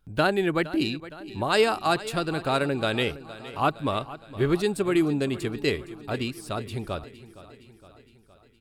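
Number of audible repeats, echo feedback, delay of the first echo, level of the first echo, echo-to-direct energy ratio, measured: 5, 59%, 0.464 s, -16.5 dB, -14.5 dB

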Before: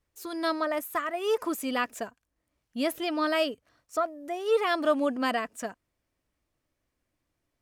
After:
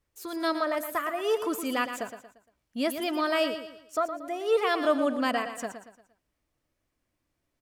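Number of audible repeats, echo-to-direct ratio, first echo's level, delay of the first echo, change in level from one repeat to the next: 4, -9.0 dB, -9.5 dB, 0.116 s, -8.0 dB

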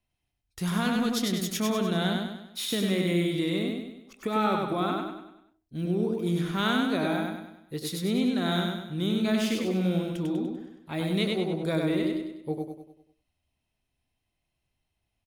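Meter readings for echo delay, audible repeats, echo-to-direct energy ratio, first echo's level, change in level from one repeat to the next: 98 ms, 5, -2.0 dB, -3.0 dB, -6.5 dB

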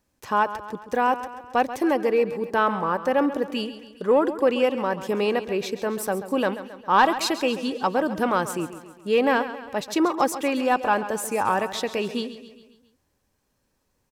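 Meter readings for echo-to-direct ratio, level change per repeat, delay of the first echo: -11.5 dB, -5.5 dB, 0.135 s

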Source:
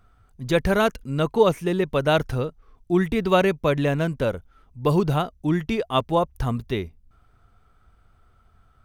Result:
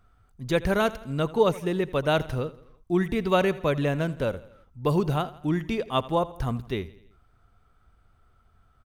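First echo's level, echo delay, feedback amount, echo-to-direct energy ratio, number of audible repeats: -18.5 dB, 83 ms, 53%, -17.0 dB, 3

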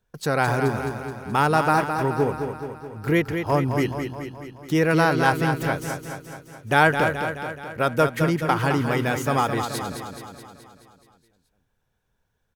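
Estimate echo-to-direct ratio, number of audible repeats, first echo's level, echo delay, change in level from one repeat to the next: -5.0 dB, 7, -7.0 dB, 0.213 s, -4.5 dB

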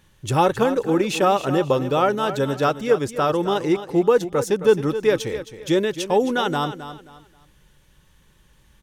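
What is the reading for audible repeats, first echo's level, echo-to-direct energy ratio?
3, -12.0 dB, -11.5 dB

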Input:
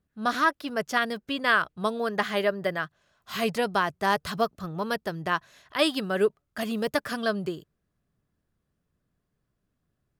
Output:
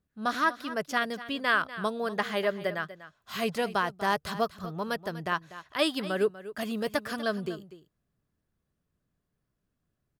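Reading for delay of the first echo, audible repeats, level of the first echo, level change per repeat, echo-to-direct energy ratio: 0.244 s, 1, -15.0 dB, no steady repeat, -15.0 dB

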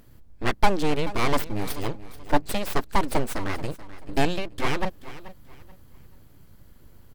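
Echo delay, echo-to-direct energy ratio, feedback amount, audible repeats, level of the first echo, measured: 0.433 s, -15.5 dB, 28%, 2, -16.0 dB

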